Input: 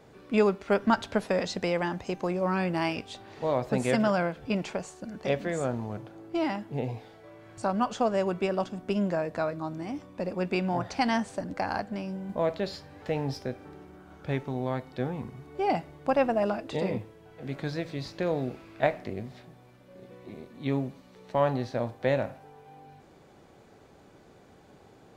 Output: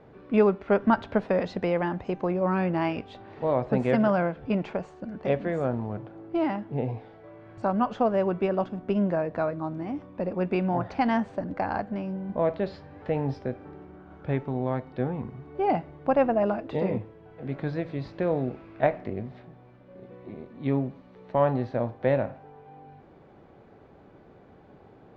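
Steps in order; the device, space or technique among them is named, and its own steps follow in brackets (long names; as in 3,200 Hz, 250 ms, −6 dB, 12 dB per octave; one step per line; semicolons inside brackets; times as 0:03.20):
phone in a pocket (low-pass filter 3,200 Hz 12 dB per octave; high-shelf EQ 2,100 Hz −8.5 dB)
level +3 dB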